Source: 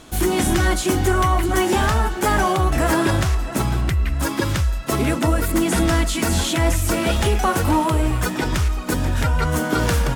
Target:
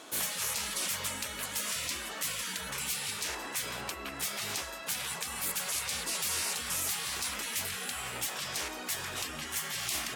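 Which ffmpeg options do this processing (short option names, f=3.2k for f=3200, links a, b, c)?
-af "highpass=400,afftfilt=real='re*lt(hypot(re,im),0.0708)':imag='im*lt(hypot(re,im),0.0708)':win_size=1024:overlap=0.75,volume=-2.5dB"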